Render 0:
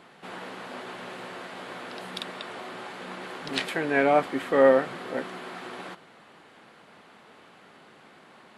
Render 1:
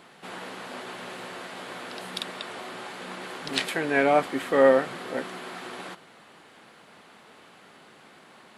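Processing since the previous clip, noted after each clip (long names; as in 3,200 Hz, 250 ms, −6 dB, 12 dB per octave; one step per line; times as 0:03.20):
high-shelf EQ 4,500 Hz +7 dB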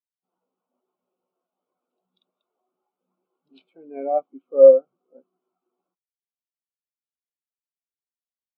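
Butterworth band-reject 1,800 Hz, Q 2.6
every bin expanded away from the loudest bin 2.5 to 1
level +6 dB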